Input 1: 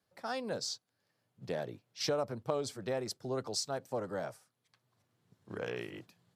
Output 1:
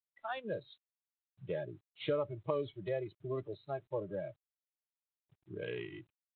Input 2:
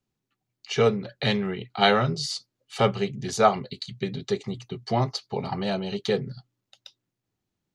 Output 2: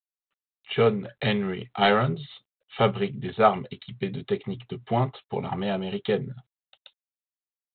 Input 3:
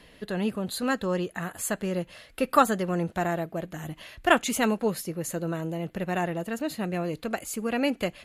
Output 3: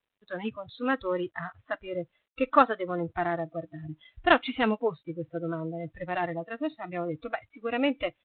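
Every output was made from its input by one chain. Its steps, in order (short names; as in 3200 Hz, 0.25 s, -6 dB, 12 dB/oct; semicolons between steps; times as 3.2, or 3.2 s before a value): spectral noise reduction 25 dB; G.726 32 kbps 8000 Hz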